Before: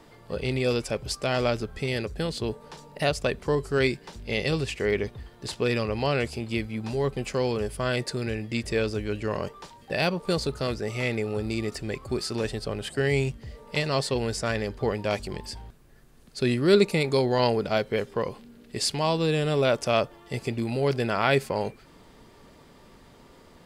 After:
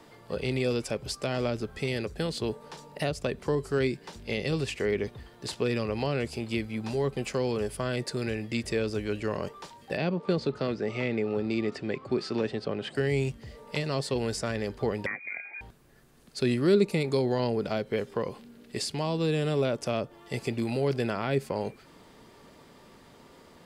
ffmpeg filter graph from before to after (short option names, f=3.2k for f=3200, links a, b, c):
-filter_complex "[0:a]asettb=1/sr,asplit=3[a][b][c];[a]atrim=end=9.974[d];[b]atrim=start=9.97:end=12.95,asetpts=PTS-STARTPTS,afade=t=in:d=0.004:c=qsin,afade=t=out:st=2.976:d=0.004:c=qsin,highpass=170,lowpass=3.7k,lowshelf=f=260:g=6.5[e];[c]atrim=start=12.946[f];[d][e]acrossfade=d=0.004:c1=hsin:c2=qsin[g];[g][f]acrossfade=d=0.004:c1=qsin:c2=hsin,asettb=1/sr,asplit=3[h][i][j];[h]atrim=end=15.064[k];[i]atrim=start=15.06:end=15.61,asetpts=PTS-STARTPTS,afade=t=in:d=0.004:c=qsin,afade=t=out:st=0.546:d=0.004:c=qsin,bandreject=f=1.5k:w=15,lowpass=f=2.1k:t=q:w=0.5098,lowpass=f=2.1k:t=q:w=0.6013,lowpass=f=2.1k:t=q:w=0.9,lowpass=f=2.1k:t=q:w=2.563,afreqshift=-2500,highpass=f=120:w=0.5412,highpass=f=120:w=1.3066[l];[j]atrim=start=15.606[m];[k][l]acrossfade=d=0.004:c1=hsin:c2=qsin[n];[n][m]acrossfade=d=0.004:c1=qsin:c2=hsin,lowshelf=f=69:g=-11.5,acrossover=split=420[o][p];[p]acompressor=threshold=-31dB:ratio=6[q];[o][q]amix=inputs=2:normalize=0"